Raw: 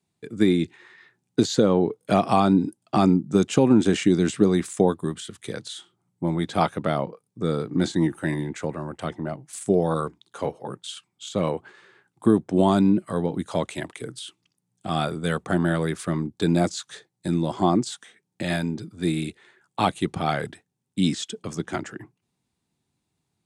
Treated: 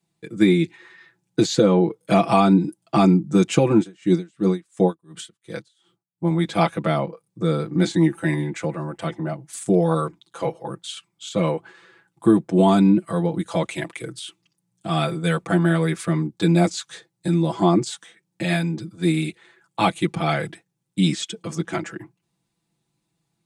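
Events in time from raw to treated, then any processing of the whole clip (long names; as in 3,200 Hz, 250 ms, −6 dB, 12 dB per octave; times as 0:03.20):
0:03.77–0:06.31: tremolo with a sine in dB 2.8 Hz, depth 33 dB
whole clip: comb filter 6 ms, depth 84%; dynamic equaliser 2,300 Hz, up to +6 dB, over −49 dBFS, Q 4.6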